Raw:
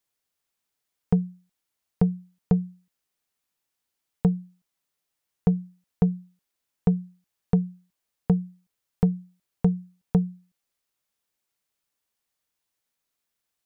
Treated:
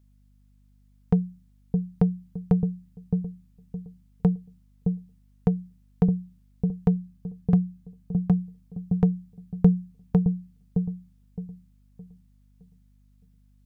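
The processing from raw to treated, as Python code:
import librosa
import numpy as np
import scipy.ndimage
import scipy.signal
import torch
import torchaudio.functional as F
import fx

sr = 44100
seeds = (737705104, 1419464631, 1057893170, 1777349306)

y = fx.notch_comb(x, sr, f0_hz=470.0, at=(6.96, 8.39))
y = fx.echo_wet_lowpass(y, sr, ms=615, feedback_pct=31, hz=450.0, wet_db=-4.0)
y = fx.add_hum(y, sr, base_hz=50, snr_db=31)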